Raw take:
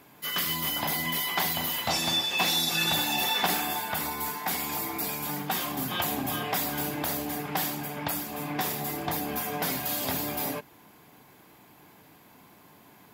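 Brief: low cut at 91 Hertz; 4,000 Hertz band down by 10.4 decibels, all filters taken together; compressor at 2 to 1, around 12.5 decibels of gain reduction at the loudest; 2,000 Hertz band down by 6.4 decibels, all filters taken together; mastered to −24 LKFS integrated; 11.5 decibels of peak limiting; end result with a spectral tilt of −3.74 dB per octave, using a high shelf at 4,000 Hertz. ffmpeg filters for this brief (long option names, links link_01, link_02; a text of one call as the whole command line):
ffmpeg -i in.wav -af "highpass=91,equalizer=frequency=2000:width_type=o:gain=-4,highshelf=frequency=4000:gain=-8.5,equalizer=frequency=4000:width_type=o:gain=-7,acompressor=threshold=-50dB:ratio=2,volume=24dB,alimiter=limit=-14.5dB:level=0:latency=1" out.wav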